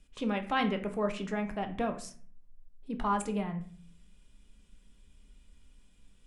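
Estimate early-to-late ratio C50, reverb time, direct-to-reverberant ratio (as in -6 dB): 11.5 dB, 0.50 s, 5.5 dB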